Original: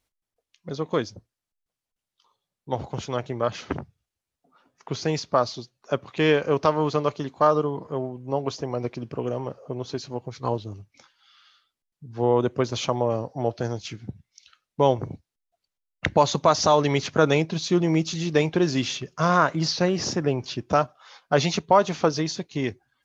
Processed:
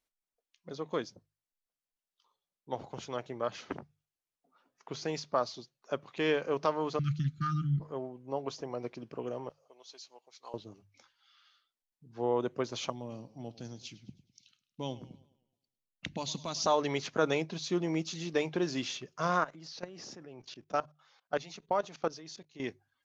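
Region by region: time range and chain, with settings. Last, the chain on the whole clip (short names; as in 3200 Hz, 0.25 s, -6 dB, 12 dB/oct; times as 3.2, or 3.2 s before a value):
6.99–7.8 brick-wall FIR band-stop 370–1200 Hz + resonant low shelf 210 Hz +13 dB, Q 3
9.49–10.54 HPF 1100 Hz + bell 1500 Hz -12 dB 1.3 oct
12.9–16.66 band shelf 850 Hz -13 dB 2.7 oct + warbling echo 0.105 s, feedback 46%, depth 91 cents, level -18.5 dB
19.39–22.6 HPF 66 Hz 6 dB/oct + notch 1000 Hz, Q 21 + level quantiser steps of 19 dB
whole clip: bell 81 Hz -11 dB 1.6 oct; notches 50/100/150 Hz; gain -8.5 dB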